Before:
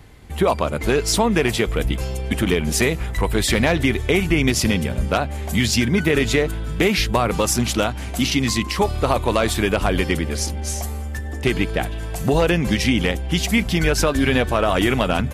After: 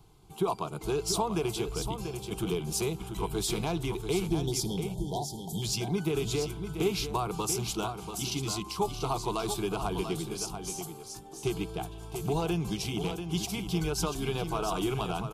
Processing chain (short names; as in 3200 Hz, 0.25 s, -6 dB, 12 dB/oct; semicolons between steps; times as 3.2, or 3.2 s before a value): spectral delete 4.25–5.63, 1000–3100 Hz; fixed phaser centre 370 Hz, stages 8; echo 0.687 s -8 dB; gain -9 dB